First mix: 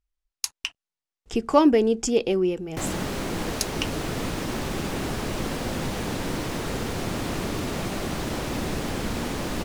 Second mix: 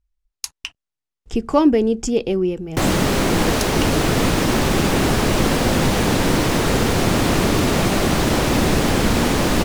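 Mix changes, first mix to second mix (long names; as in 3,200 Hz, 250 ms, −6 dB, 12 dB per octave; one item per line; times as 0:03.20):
speech: add low-shelf EQ 220 Hz +10 dB
background +11.5 dB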